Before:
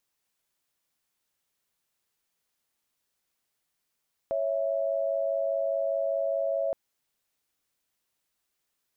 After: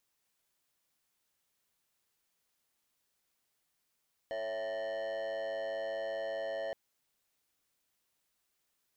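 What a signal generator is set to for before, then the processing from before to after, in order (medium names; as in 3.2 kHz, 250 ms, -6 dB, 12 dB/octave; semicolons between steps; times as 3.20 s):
chord C#5/E5 sine, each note -28 dBFS 2.42 s
saturation -35.5 dBFS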